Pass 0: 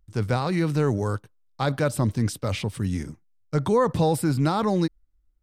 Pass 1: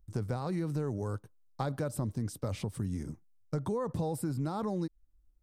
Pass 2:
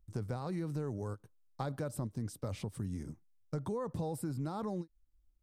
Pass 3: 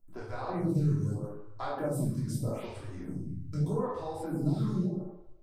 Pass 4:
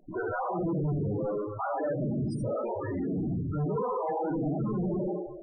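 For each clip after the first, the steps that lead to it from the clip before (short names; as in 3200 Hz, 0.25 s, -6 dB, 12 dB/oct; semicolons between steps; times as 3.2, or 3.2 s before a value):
bell 2700 Hz -10 dB 1.9 oct; compressor 6:1, threshold -31 dBFS, peak gain reduction 13 dB
ending taper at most 460 dB/s; gain -4 dB
shoebox room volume 420 m³, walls mixed, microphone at 3 m; photocell phaser 0.8 Hz
overdrive pedal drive 41 dB, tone 4000 Hz, clips at -17.5 dBFS; loudest bins only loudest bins 16; gain -5 dB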